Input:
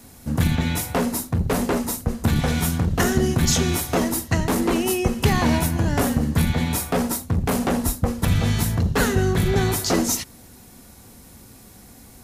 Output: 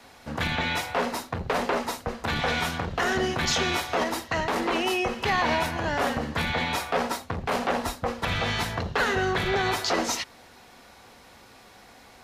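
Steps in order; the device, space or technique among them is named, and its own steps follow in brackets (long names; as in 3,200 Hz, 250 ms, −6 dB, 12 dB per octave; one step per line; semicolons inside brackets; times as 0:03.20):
DJ mixer with the lows and highs turned down (three-way crossover with the lows and the highs turned down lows −17 dB, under 480 Hz, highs −21 dB, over 4,700 Hz; brickwall limiter −19.5 dBFS, peak gain reduction 8.5 dB)
level +4.5 dB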